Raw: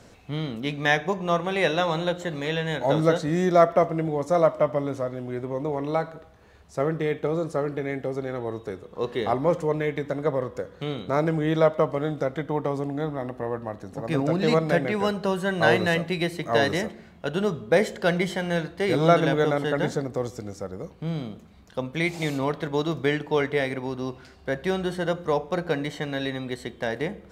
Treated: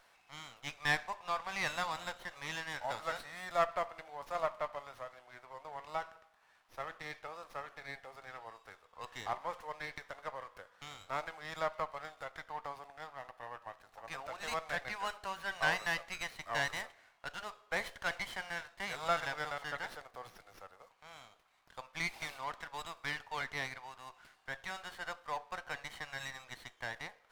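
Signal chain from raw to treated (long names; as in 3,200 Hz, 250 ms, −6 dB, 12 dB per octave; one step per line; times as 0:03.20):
high-pass filter 810 Hz 24 dB per octave
windowed peak hold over 5 samples
level −7.5 dB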